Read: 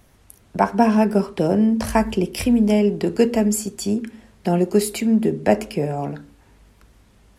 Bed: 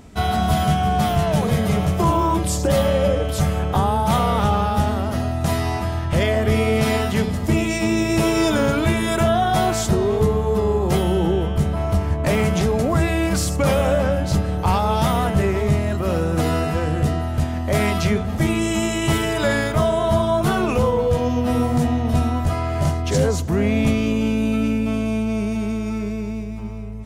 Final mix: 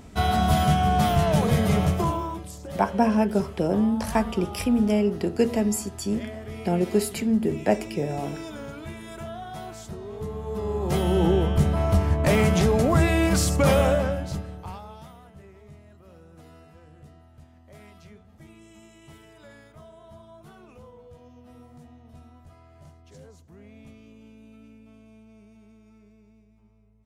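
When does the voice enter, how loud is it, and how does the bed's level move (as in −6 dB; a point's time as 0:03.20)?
2.20 s, −5.0 dB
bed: 0:01.88 −2 dB
0:02.52 −19 dB
0:10.02 −19 dB
0:11.24 −1 dB
0:13.83 −1 dB
0:15.20 −29.5 dB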